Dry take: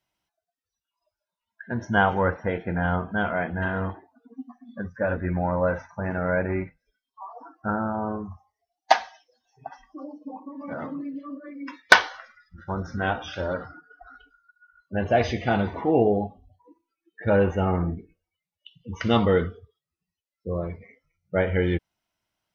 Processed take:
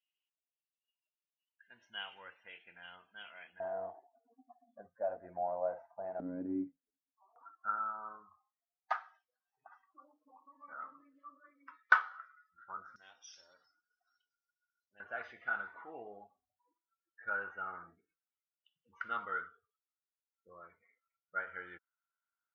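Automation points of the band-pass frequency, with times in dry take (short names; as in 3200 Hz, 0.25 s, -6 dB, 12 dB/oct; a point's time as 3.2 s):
band-pass, Q 11
2800 Hz
from 3.6 s 690 Hz
from 6.2 s 280 Hz
from 7.36 s 1300 Hz
from 12.96 s 5600 Hz
from 15 s 1400 Hz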